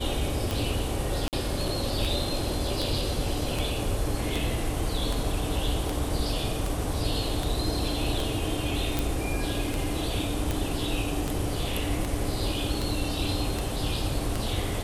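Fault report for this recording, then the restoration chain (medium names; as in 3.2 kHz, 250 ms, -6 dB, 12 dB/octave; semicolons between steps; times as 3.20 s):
tick 78 rpm
1.28–1.33 s: dropout 48 ms
8.99 s: pop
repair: de-click; interpolate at 1.28 s, 48 ms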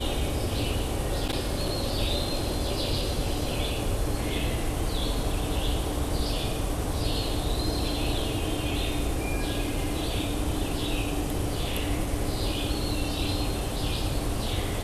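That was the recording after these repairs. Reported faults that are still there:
nothing left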